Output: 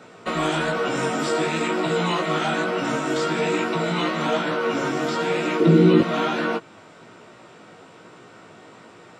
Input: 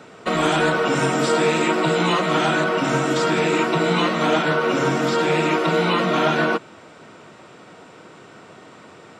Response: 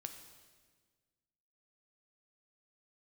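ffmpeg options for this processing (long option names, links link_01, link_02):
-filter_complex "[0:a]asettb=1/sr,asplit=3[link_01][link_02][link_03];[link_01]atrim=end=5.604[link_04];[link_02]atrim=start=5.6:end=6.01,asetpts=PTS-STARTPTS,afade=type=in:duration=0.004:curve=qsin,afade=type=out:start_time=0.406:duration=0.004:curve=qsin,lowshelf=frequency=520:width_type=q:width=1.5:gain=13.5[link_05];[link_03]atrim=start=6.006[link_06];[link_04][link_05]acrossfade=duration=0.004:curve1=hsin:curve2=qsin[link_07];[link_07][link_06]acrossfade=duration=0.004:curve1=qsin:curve2=hsin,asplit=2[link_08][link_09];[link_09]alimiter=limit=-14.5dB:level=0:latency=1:release=226,volume=-1.5dB[link_10];[link_08][link_10]amix=inputs=2:normalize=0,flanger=delay=16.5:depth=2.4:speed=1.1,volume=-4.5dB"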